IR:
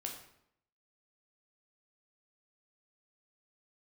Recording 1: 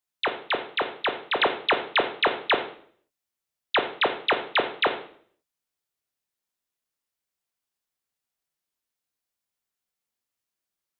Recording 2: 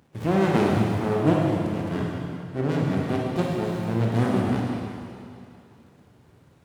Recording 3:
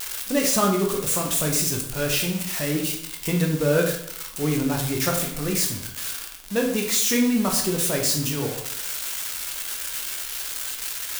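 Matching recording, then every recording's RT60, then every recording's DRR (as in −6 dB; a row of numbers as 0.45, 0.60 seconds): 3; 0.55, 2.6, 0.75 seconds; 5.5, −3.0, 0.5 decibels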